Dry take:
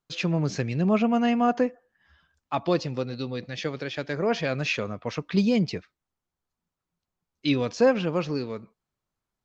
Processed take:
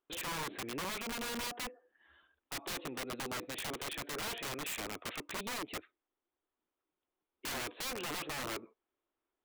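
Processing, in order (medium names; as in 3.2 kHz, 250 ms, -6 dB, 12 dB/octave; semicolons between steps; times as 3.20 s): resampled via 8 kHz; compression 2.5:1, threshold -33 dBFS, peak gain reduction 11.5 dB; resonant low shelf 230 Hz -11.5 dB, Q 3; integer overflow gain 31.5 dB; trim -2.5 dB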